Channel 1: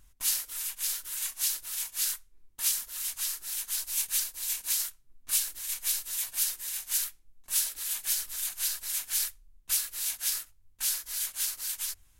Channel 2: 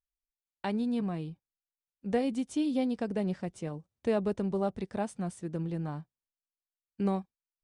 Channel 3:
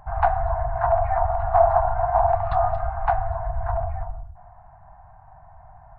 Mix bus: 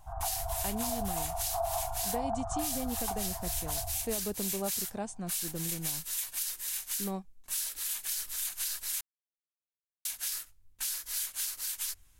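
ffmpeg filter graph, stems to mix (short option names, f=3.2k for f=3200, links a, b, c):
-filter_complex "[0:a]volume=0dB,asplit=3[a][b][c];[a]atrim=end=9.01,asetpts=PTS-STARTPTS,afade=t=out:st=9.006:d=0.004:c=hsin[d];[b]atrim=start=9.01:end=10.05,asetpts=PTS-STARTPTS,volume=0[e];[c]atrim=start=10.05,asetpts=PTS-STARTPTS,afade=t=in:d=0.004:c=hsin[f];[d][e][f]concat=n=3:v=0:a=1[g];[1:a]equalizer=f=7k:t=o:w=0.9:g=13.5,volume=-4.5dB[h];[2:a]lowpass=f=1.4k:w=0.5412,lowpass=f=1.4k:w=1.3066,volume=-12dB[i];[g][h][i]amix=inputs=3:normalize=0,alimiter=limit=-23dB:level=0:latency=1:release=125"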